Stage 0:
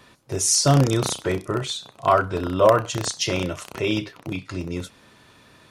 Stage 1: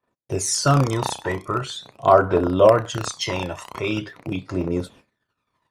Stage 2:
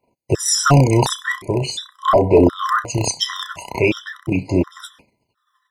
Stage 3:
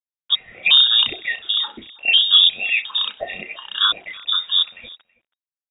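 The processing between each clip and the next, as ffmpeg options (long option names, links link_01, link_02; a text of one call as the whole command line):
ffmpeg -i in.wav -af "agate=range=-39dB:threshold=-48dB:ratio=16:detection=peak,equalizer=frequency=750:width_type=o:width=2.9:gain=10,aphaser=in_gain=1:out_gain=1:delay=1.2:decay=0.6:speed=0.43:type=triangular,volume=-6.5dB" out.wav
ffmpeg -i in.wav -af "apsyclip=14dB,tremolo=f=2.9:d=0.34,afftfilt=real='re*gt(sin(2*PI*1.4*pts/sr)*(1-2*mod(floor(b*sr/1024/1000),2)),0)':imag='im*gt(sin(2*PI*1.4*pts/sr)*(1-2*mod(floor(b*sr/1024/1000),2)),0)':win_size=1024:overlap=0.75,volume=-3dB" out.wav
ffmpeg -i in.wav -af "acrusher=bits=6:mix=0:aa=0.000001,aecho=1:1:326:0.075,lowpass=frequency=3200:width_type=q:width=0.5098,lowpass=frequency=3200:width_type=q:width=0.6013,lowpass=frequency=3200:width_type=q:width=0.9,lowpass=frequency=3200:width_type=q:width=2.563,afreqshift=-3800,volume=-1.5dB" out.wav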